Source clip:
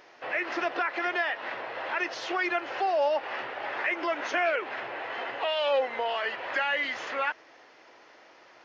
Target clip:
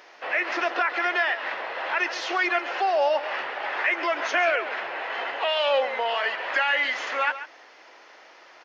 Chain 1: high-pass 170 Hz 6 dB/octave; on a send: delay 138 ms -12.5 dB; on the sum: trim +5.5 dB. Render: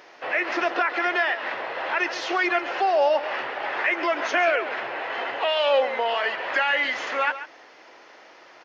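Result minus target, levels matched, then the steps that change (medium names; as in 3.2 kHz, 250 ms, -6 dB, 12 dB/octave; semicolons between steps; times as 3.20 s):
125 Hz band +7.0 dB
change: high-pass 560 Hz 6 dB/octave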